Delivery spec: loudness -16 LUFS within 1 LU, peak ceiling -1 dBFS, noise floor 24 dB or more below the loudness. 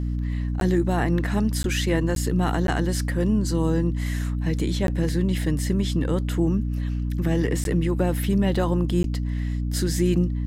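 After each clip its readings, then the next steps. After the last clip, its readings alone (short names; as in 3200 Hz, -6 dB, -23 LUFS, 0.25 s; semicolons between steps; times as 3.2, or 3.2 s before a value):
dropouts 7; longest dropout 12 ms; hum 60 Hz; harmonics up to 300 Hz; hum level -23 dBFS; loudness -24.0 LUFS; peak -9.5 dBFS; loudness target -16.0 LUFS
-> interpolate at 0.6/1.63/2.15/2.67/4.87/7.64/9.03, 12 ms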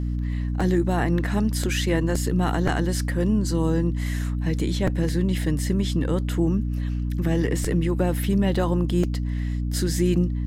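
dropouts 0; hum 60 Hz; harmonics up to 300 Hz; hum level -23 dBFS
-> notches 60/120/180/240/300 Hz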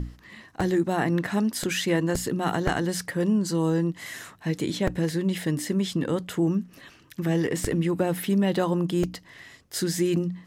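hum none; loudness -26.0 LUFS; peak -9.0 dBFS; loudness target -16.0 LUFS
-> gain +10 dB; limiter -1 dBFS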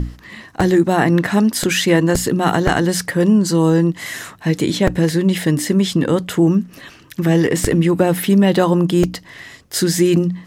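loudness -16.0 LUFS; peak -1.0 dBFS; noise floor -44 dBFS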